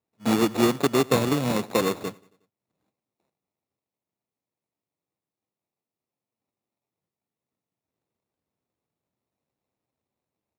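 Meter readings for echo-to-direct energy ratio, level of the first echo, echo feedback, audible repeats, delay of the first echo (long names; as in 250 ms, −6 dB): −22.5 dB, −24.0 dB, 56%, 3, 91 ms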